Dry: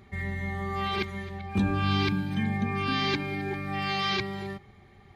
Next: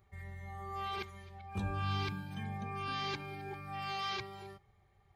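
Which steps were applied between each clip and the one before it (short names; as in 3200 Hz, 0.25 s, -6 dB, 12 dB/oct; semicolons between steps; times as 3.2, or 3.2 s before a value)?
bell 330 Hz -5.5 dB 2.4 oct; spectral noise reduction 6 dB; ten-band EQ 250 Hz -11 dB, 500 Hz +3 dB, 2000 Hz -6 dB, 4000 Hz -6 dB; gain -4 dB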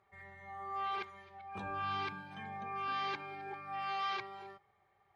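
band-pass 1100 Hz, Q 0.67; gain +3 dB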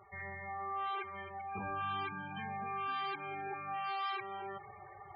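reverse; upward compressor, threshold -42 dBFS; reverse; loudest bins only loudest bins 32; compressor 2:1, threshold -45 dBFS, peak gain reduction 6.5 dB; gain +5.5 dB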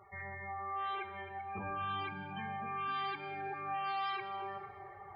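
plate-style reverb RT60 2.6 s, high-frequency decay 0.6×, DRR 8.5 dB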